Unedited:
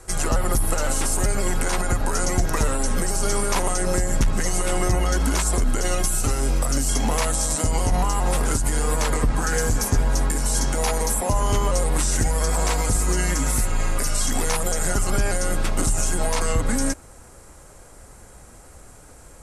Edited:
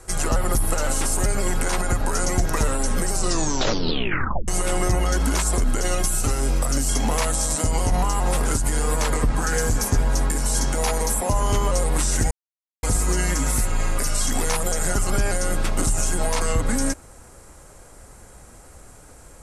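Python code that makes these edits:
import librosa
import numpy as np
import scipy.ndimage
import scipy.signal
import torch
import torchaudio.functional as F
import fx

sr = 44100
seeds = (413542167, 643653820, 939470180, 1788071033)

y = fx.edit(x, sr, fx.tape_stop(start_s=3.12, length_s=1.36),
    fx.silence(start_s=12.31, length_s=0.52), tone=tone)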